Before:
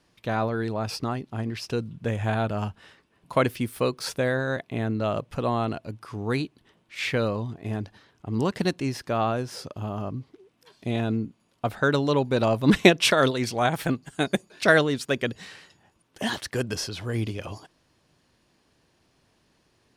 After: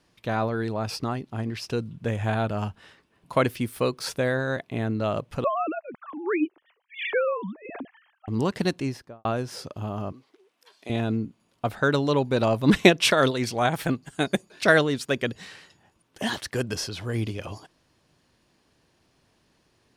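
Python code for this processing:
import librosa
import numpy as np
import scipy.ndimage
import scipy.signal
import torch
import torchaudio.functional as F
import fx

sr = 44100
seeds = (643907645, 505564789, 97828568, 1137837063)

y = fx.sine_speech(x, sr, at=(5.44, 8.28))
y = fx.studio_fade_out(y, sr, start_s=8.78, length_s=0.47)
y = fx.bessel_highpass(y, sr, hz=600.0, order=2, at=(10.12, 10.9))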